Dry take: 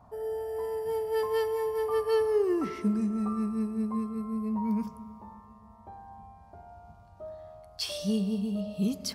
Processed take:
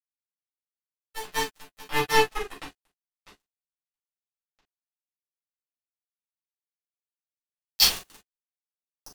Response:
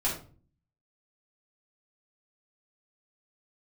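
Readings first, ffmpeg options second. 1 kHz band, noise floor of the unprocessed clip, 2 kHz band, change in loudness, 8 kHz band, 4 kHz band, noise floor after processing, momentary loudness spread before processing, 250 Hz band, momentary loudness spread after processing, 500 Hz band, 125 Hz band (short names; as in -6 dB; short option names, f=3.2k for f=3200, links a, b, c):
+5.5 dB, -54 dBFS, +13.0 dB, +5.5 dB, n/a, +12.0 dB, under -85 dBFS, 21 LU, -17.5 dB, 20 LU, -6.5 dB, -8.0 dB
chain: -filter_complex "[0:a]lowshelf=f=160:g=-12,acrossover=split=380|860[a][b][c];[c]dynaudnorm=f=660:g=3:m=12dB[d];[a][b][d]amix=inputs=3:normalize=0,acrusher=bits=2:mix=0:aa=0.5[e];[1:a]atrim=start_sample=2205,atrim=end_sample=3087,asetrate=48510,aresample=44100[f];[e][f]afir=irnorm=-1:irlink=0"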